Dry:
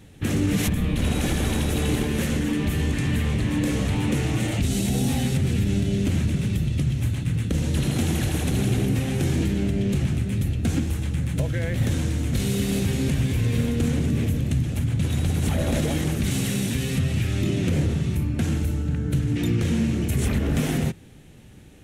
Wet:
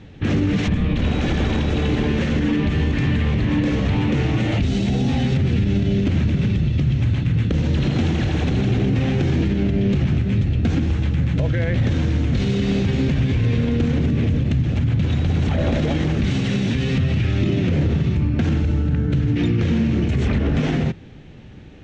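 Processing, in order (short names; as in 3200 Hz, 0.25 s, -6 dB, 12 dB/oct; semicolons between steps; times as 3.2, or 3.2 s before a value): limiter -17.5 dBFS, peak gain reduction 4.5 dB; Bessel low-pass 3600 Hz, order 8; gain +6.5 dB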